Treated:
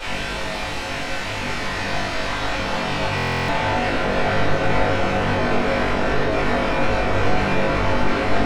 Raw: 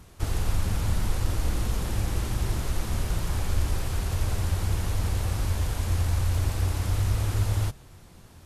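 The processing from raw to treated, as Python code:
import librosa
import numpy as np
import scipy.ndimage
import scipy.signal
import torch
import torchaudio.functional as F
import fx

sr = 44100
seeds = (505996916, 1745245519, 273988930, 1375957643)

p1 = scipy.signal.sosfilt(scipy.signal.butter(2, 280.0, 'highpass', fs=sr, output='sos'), x)
p2 = fx.high_shelf(p1, sr, hz=4500.0, db=9.0)
p3 = fx.over_compress(p2, sr, threshold_db=-43.0, ratio=-1.0)
p4 = p2 + F.gain(torch.from_numpy(p3), -2.5).numpy()
p5 = fx.fuzz(p4, sr, gain_db=51.0, gate_db=-59.0)
p6 = fx.filter_sweep_bandpass(p5, sr, from_hz=2600.0, to_hz=430.0, start_s=1.08, end_s=4.31, q=5.1)
p7 = (np.mod(10.0 ** (28.0 / 20.0) * p6 + 1.0, 2.0) - 1.0) / 10.0 ** (28.0 / 20.0)
p8 = fx.spacing_loss(p7, sr, db_at_10k=27)
p9 = fx.room_flutter(p8, sr, wall_m=3.5, rt60_s=0.44)
p10 = fx.room_shoebox(p9, sr, seeds[0], volume_m3=180.0, walls='furnished', distance_m=4.7)
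p11 = fx.buffer_glitch(p10, sr, at_s=(3.16,), block=1024, repeats=13)
y = F.gain(torch.from_numpy(p11), 3.0).numpy()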